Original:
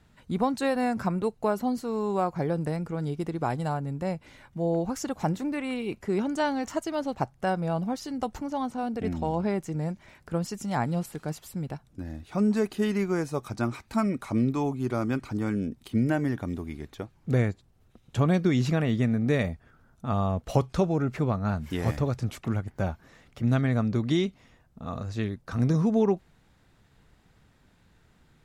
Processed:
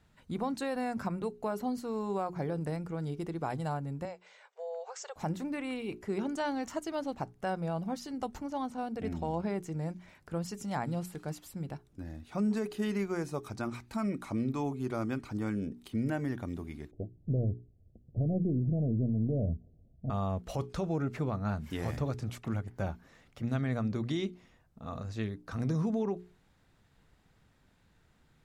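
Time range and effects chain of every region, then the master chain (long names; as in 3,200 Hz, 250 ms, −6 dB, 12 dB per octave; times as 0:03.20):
0:04.05–0:05.16: linear-phase brick-wall band-pass 400–8,400 Hz + downward compressor 2 to 1, threshold −35 dBFS
0:16.91–0:20.10: gain on one half-wave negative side −3 dB + Butterworth low-pass 700 Hz 72 dB per octave + parametric band 71 Hz +10.5 dB 2.6 octaves
whole clip: mains-hum notches 60/120/180/240/300/360/420 Hz; brickwall limiter −18.5 dBFS; level −5 dB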